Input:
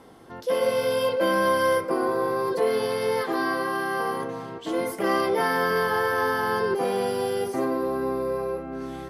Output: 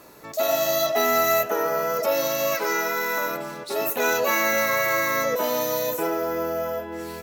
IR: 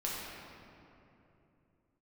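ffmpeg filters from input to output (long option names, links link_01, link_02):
-af "crystalizer=i=3:c=0,asetrate=55566,aresample=44100"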